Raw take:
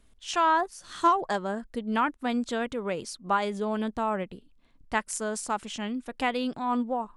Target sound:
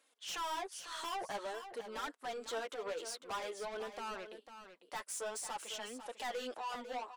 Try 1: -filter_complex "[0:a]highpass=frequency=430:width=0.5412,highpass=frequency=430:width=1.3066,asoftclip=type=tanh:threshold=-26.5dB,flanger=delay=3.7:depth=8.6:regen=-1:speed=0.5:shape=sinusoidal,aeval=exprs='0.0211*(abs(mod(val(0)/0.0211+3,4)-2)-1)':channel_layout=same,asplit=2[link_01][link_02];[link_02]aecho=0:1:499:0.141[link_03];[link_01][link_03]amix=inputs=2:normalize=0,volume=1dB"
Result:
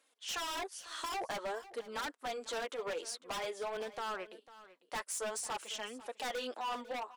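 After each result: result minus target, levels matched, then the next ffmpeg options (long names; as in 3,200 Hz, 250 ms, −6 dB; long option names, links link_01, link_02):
echo-to-direct −6.5 dB; soft clipping: distortion −5 dB
-filter_complex "[0:a]highpass=frequency=430:width=0.5412,highpass=frequency=430:width=1.3066,asoftclip=type=tanh:threshold=-26.5dB,flanger=delay=3.7:depth=8.6:regen=-1:speed=0.5:shape=sinusoidal,aeval=exprs='0.0211*(abs(mod(val(0)/0.0211+3,4)-2)-1)':channel_layout=same,asplit=2[link_01][link_02];[link_02]aecho=0:1:499:0.299[link_03];[link_01][link_03]amix=inputs=2:normalize=0,volume=1dB"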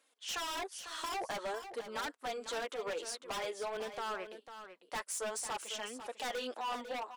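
soft clipping: distortion −5 dB
-filter_complex "[0:a]highpass=frequency=430:width=0.5412,highpass=frequency=430:width=1.3066,asoftclip=type=tanh:threshold=-36dB,flanger=delay=3.7:depth=8.6:regen=-1:speed=0.5:shape=sinusoidal,aeval=exprs='0.0211*(abs(mod(val(0)/0.0211+3,4)-2)-1)':channel_layout=same,asplit=2[link_01][link_02];[link_02]aecho=0:1:499:0.299[link_03];[link_01][link_03]amix=inputs=2:normalize=0,volume=1dB"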